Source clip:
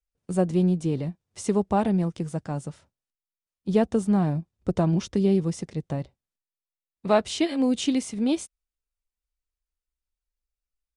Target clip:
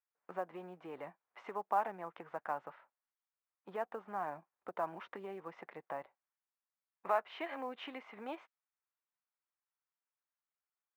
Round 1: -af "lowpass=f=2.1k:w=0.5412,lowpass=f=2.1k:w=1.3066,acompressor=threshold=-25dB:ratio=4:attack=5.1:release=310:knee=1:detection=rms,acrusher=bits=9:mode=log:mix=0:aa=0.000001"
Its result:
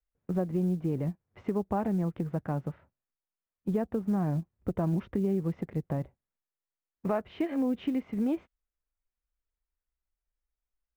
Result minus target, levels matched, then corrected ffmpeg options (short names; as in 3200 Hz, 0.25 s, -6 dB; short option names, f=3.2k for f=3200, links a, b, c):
1000 Hz band -12.0 dB
-af "lowpass=f=2.1k:w=0.5412,lowpass=f=2.1k:w=1.3066,acompressor=threshold=-25dB:ratio=4:attack=5.1:release=310:knee=1:detection=rms,highpass=f=930:t=q:w=1.5,acrusher=bits=9:mode=log:mix=0:aa=0.000001"